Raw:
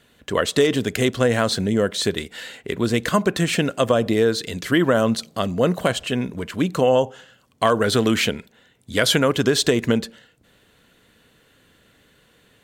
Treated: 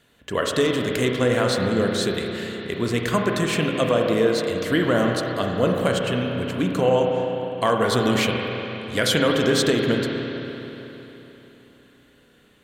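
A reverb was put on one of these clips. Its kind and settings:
spring reverb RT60 3.6 s, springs 32/50 ms, chirp 75 ms, DRR 0.5 dB
level −3.5 dB

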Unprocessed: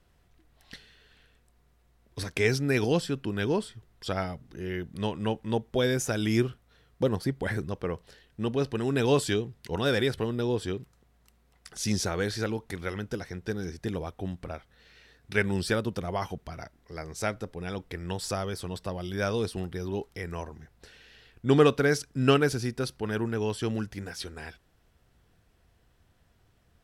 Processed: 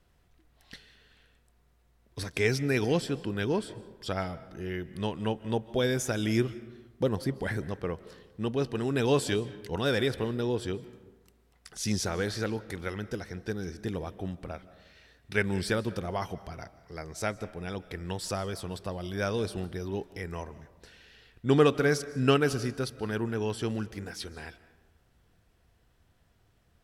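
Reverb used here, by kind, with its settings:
comb and all-pass reverb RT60 1.2 s, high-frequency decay 0.5×, pre-delay 110 ms, DRR 16.5 dB
level −1.5 dB

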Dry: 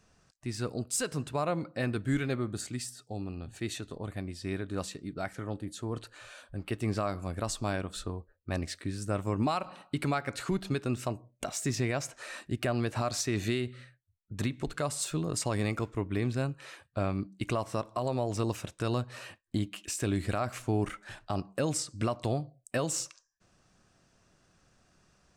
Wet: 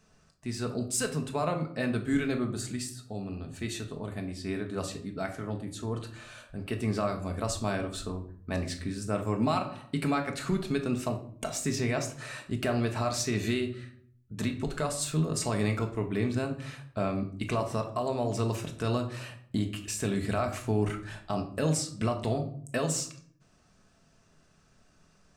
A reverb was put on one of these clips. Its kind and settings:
rectangular room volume 700 cubic metres, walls furnished, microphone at 1.5 metres

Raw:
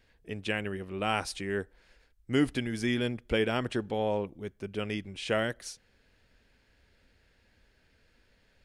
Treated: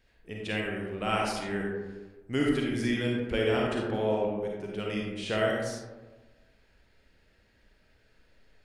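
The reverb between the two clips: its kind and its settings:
comb and all-pass reverb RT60 1.3 s, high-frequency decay 0.35×, pre-delay 10 ms, DRR −2.5 dB
level −3 dB

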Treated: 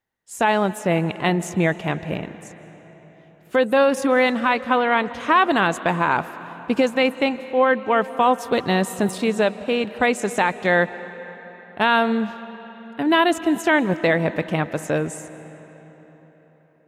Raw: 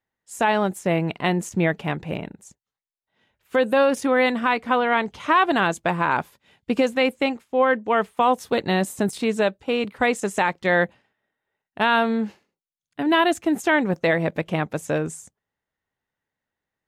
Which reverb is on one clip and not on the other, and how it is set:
comb and all-pass reverb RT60 4.5 s, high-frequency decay 0.7×, pre-delay 115 ms, DRR 14.5 dB
level +1.5 dB

